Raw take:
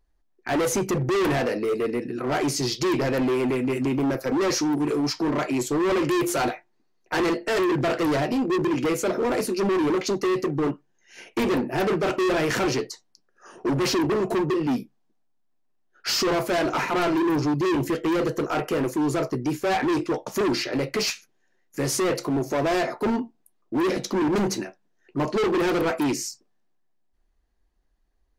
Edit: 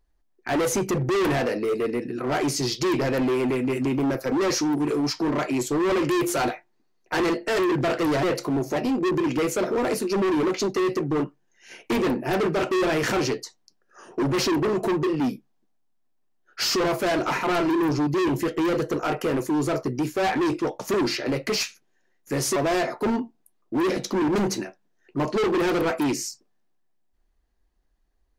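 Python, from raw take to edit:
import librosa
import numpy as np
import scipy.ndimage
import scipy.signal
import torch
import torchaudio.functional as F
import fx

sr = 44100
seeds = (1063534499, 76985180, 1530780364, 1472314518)

y = fx.edit(x, sr, fx.move(start_s=22.03, length_s=0.53, to_s=8.23), tone=tone)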